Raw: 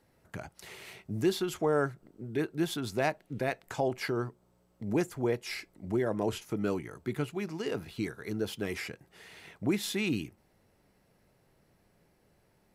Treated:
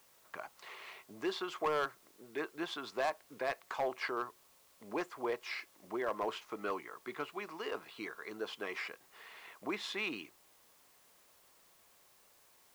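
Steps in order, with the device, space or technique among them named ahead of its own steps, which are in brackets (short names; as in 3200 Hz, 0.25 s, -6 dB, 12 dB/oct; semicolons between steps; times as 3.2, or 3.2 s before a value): drive-through speaker (BPF 530–3900 Hz; bell 1100 Hz +11 dB 0.33 oct; hard clip -26 dBFS, distortion -13 dB; white noise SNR 25 dB); gain -1.5 dB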